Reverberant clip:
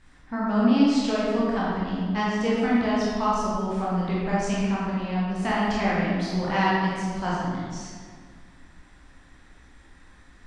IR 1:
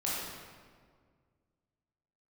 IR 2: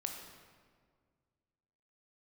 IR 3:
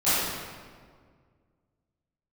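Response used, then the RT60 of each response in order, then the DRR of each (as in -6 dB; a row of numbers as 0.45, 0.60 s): 1; 1.8, 1.8, 1.8 s; -7.5, 2.5, -17.0 dB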